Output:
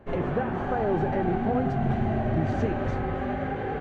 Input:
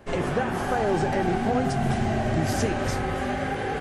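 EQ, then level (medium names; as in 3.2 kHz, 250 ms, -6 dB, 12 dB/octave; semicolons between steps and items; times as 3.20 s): tape spacing loss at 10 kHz 34 dB; band-stop 5.1 kHz, Q 7.5; 0.0 dB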